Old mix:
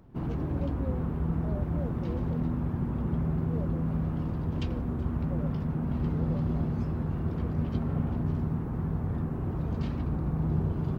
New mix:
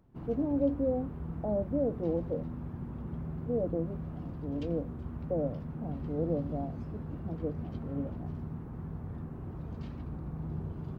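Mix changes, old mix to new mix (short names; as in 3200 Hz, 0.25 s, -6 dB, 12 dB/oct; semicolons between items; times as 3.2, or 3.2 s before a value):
speech +10.5 dB; background -9.5 dB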